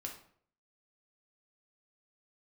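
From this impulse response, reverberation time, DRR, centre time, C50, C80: 0.60 s, 0.5 dB, 21 ms, 7.5 dB, 11.5 dB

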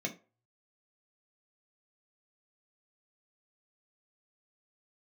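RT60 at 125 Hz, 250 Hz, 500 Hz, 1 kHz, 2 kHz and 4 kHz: 0.50, 0.25, 0.35, 0.35, 0.25, 0.20 seconds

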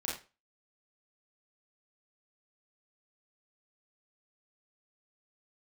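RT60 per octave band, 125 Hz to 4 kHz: 0.30, 0.30, 0.35, 0.30, 0.30, 0.25 seconds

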